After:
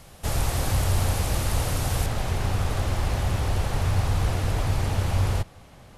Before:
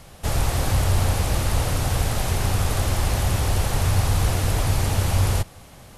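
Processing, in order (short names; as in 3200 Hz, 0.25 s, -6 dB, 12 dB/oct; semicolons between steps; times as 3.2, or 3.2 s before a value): high shelf 5900 Hz +2 dB, from 2.06 s -10 dB; short-mantissa float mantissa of 6-bit; gain -3 dB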